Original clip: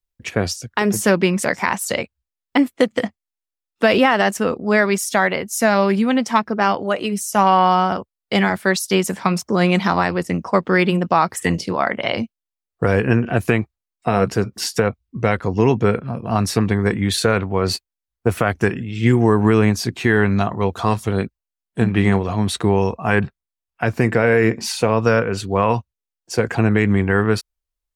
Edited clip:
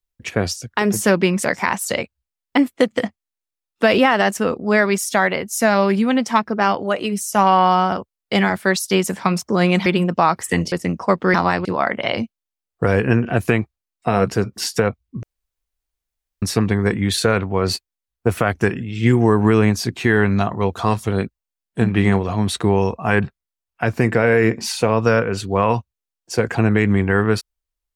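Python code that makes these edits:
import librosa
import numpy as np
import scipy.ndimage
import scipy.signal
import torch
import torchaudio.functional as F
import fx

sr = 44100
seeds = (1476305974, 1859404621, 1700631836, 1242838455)

y = fx.edit(x, sr, fx.swap(start_s=9.86, length_s=0.31, other_s=10.79, other_length_s=0.86),
    fx.room_tone_fill(start_s=15.23, length_s=1.19), tone=tone)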